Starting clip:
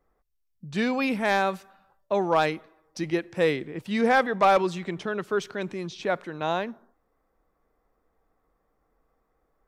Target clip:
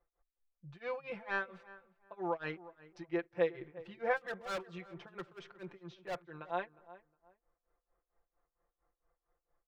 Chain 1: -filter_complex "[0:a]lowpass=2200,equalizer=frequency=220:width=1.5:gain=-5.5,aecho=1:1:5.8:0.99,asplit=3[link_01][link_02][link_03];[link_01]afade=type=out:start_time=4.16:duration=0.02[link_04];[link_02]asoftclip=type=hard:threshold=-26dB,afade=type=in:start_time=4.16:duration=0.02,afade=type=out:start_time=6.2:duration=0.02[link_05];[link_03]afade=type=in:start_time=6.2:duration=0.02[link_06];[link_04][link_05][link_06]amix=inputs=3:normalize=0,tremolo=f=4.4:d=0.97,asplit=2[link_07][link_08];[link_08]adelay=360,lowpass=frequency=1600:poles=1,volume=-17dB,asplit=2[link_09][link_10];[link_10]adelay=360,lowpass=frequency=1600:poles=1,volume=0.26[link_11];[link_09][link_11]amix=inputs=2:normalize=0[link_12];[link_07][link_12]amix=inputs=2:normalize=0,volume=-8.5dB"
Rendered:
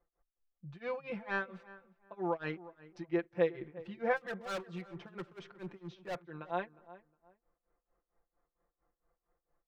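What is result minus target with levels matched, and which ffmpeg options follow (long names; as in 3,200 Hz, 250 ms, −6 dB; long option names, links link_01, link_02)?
250 Hz band +2.5 dB
-filter_complex "[0:a]lowpass=2200,equalizer=frequency=220:width=1.5:gain=-14,aecho=1:1:5.8:0.99,asplit=3[link_01][link_02][link_03];[link_01]afade=type=out:start_time=4.16:duration=0.02[link_04];[link_02]asoftclip=type=hard:threshold=-26dB,afade=type=in:start_time=4.16:duration=0.02,afade=type=out:start_time=6.2:duration=0.02[link_05];[link_03]afade=type=in:start_time=6.2:duration=0.02[link_06];[link_04][link_05][link_06]amix=inputs=3:normalize=0,tremolo=f=4.4:d=0.97,asplit=2[link_07][link_08];[link_08]adelay=360,lowpass=frequency=1600:poles=1,volume=-17dB,asplit=2[link_09][link_10];[link_10]adelay=360,lowpass=frequency=1600:poles=1,volume=0.26[link_11];[link_09][link_11]amix=inputs=2:normalize=0[link_12];[link_07][link_12]amix=inputs=2:normalize=0,volume=-8.5dB"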